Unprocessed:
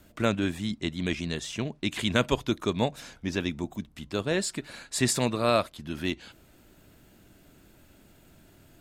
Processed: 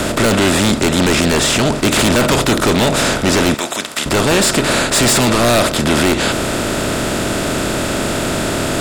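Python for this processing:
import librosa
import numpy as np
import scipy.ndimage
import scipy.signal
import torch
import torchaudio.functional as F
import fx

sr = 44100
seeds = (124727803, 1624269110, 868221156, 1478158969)

p1 = fx.bin_compress(x, sr, power=0.4)
p2 = fx.highpass(p1, sr, hz=1500.0, slope=6, at=(3.54, 4.06))
p3 = fx.fold_sine(p2, sr, drive_db=18, ceiling_db=-2.0)
p4 = p2 + (p3 * librosa.db_to_amplitude(-10.5))
y = p4 * librosa.db_to_amplitude(1.0)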